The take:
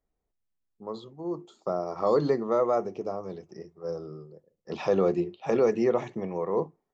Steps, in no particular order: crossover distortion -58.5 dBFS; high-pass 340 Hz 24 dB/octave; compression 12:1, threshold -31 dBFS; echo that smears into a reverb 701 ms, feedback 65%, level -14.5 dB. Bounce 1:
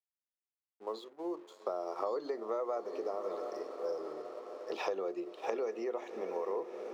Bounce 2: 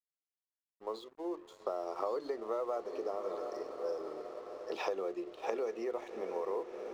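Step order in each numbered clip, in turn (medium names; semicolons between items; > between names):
echo that smears into a reverb > crossover distortion > compression > high-pass; echo that smears into a reverb > compression > high-pass > crossover distortion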